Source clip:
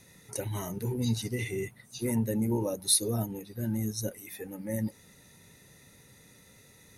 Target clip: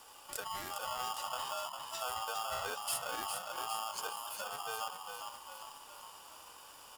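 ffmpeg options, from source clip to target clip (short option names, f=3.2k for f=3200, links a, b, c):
-filter_complex "[0:a]bandreject=f=57.3:t=h:w=4,bandreject=f=114.6:t=h:w=4,bandreject=f=171.9:t=h:w=4,bandreject=f=229.2:t=h:w=4,bandreject=f=286.5:t=h:w=4,bandreject=f=343.8:t=h:w=4,acompressor=threshold=-43dB:ratio=2.5,asplit=2[a][b];[b]asplit=7[c][d][e][f][g][h][i];[c]adelay=406,afreqshift=-45,volume=-6dB[j];[d]adelay=812,afreqshift=-90,volume=-10.9dB[k];[e]adelay=1218,afreqshift=-135,volume=-15.8dB[l];[f]adelay=1624,afreqshift=-180,volume=-20.6dB[m];[g]adelay=2030,afreqshift=-225,volume=-25.5dB[n];[h]adelay=2436,afreqshift=-270,volume=-30.4dB[o];[i]adelay=2842,afreqshift=-315,volume=-35.3dB[p];[j][k][l][m][n][o][p]amix=inputs=7:normalize=0[q];[a][q]amix=inputs=2:normalize=0,aeval=exprs='val(0)*sgn(sin(2*PI*1000*n/s))':c=same,volume=1dB"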